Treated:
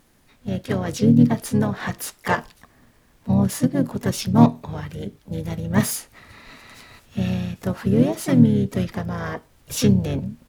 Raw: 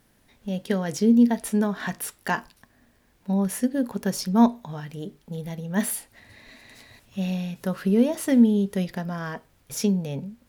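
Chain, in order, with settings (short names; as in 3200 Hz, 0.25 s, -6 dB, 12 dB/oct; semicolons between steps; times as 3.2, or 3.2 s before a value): self-modulated delay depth 0.06 ms; vocal rider within 5 dB 2 s; harmoniser -12 st -8 dB, -7 st -5 dB, +3 st -10 dB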